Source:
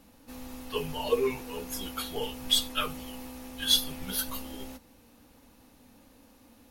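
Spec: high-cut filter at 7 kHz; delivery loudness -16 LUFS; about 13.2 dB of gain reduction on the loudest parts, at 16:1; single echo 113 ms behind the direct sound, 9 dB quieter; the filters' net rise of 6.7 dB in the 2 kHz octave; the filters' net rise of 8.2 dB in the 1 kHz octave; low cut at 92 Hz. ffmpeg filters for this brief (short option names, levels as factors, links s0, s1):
-af "highpass=92,lowpass=7000,equalizer=f=1000:t=o:g=8,equalizer=f=2000:t=o:g=7,acompressor=threshold=0.0316:ratio=16,aecho=1:1:113:0.355,volume=9.44"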